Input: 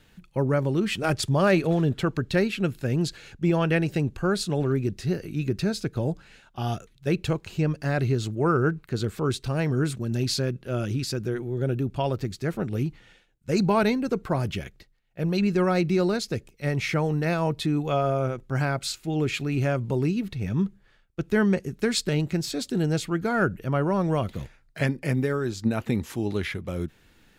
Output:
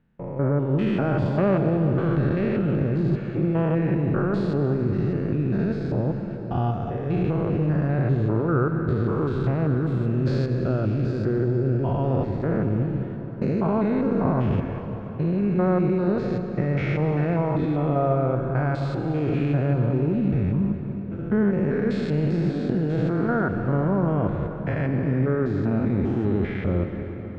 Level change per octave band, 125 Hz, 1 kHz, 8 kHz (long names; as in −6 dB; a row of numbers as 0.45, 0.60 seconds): +4.0 dB, +0.5 dB, below −20 dB